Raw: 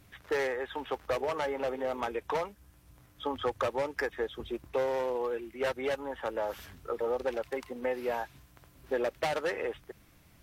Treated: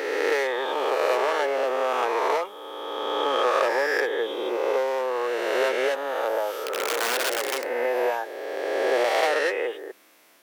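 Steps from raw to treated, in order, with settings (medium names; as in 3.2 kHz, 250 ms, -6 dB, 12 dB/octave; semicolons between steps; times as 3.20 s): reverse spectral sustain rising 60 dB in 2.42 s; 6.58–7.69 s: integer overflow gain 24 dB; high-pass 340 Hz 24 dB/octave; trim +4.5 dB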